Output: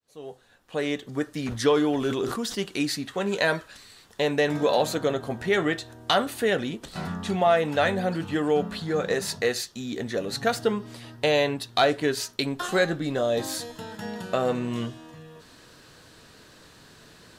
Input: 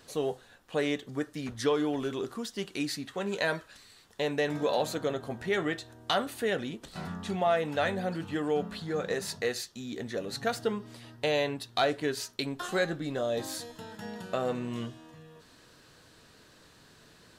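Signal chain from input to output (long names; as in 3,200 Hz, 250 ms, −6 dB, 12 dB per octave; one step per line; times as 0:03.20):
fade in at the beginning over 1.38 s
0:01.40–0:02.58: level that may fall only so fast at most 58 dB per second
level +6 dB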